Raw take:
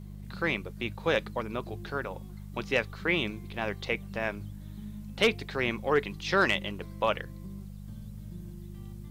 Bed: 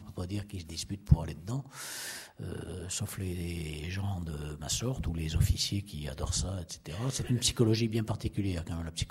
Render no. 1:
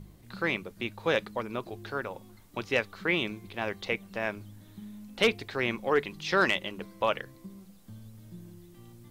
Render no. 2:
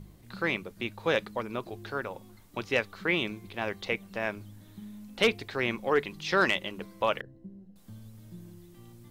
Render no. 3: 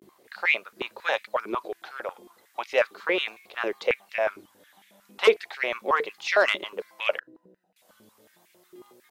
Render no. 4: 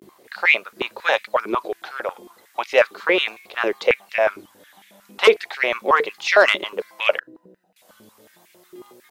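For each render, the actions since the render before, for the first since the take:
hum removal 50 Hz, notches 4
0:07.21–0:07.76: moving average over 38 samples
pitch vibrato 0.36 Hz 76 cents; high-pass on a step sequencer 11 Hz 360–2,200 Hz
level +7 dB; brickwall limiter −2 dBFS, peak gain reduction 2.5 dB

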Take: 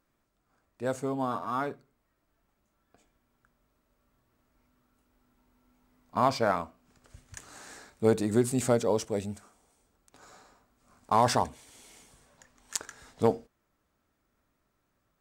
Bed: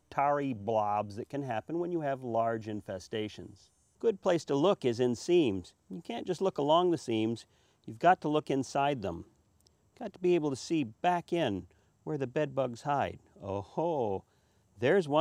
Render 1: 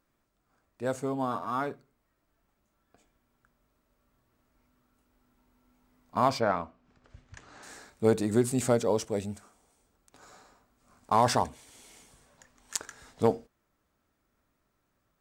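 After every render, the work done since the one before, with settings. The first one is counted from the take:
0:06.40–0:07.63: high-frequency loss of the air 150 metres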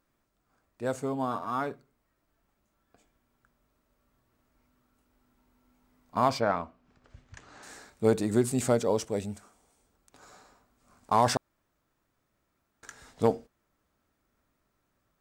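0:11.37–0:12.83: fill with room tone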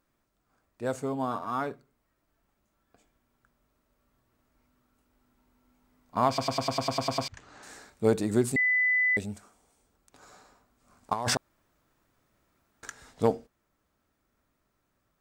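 0:06.28: stutter in place 0.10 s, 10 plays
0:08.56–0:09.17: beep over 2,000 Hz −21.5 dBFS
0:11.13–0:12.90: compressor whose output falls as the input rises −30 dBFS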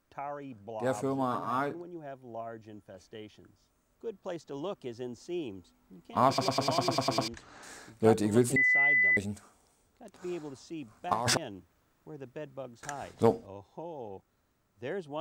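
mix in bed −10.5 dB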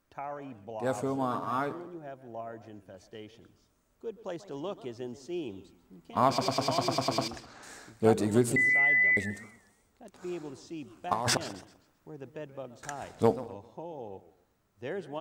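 single-tap delay 180 ms −23 dB
feedback echo with a swinging delay time 130 ms, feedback 34%, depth 216 cents, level −16 dB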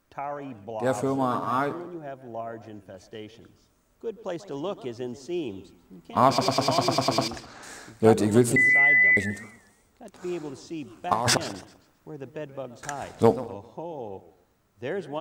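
level +5.5 dB

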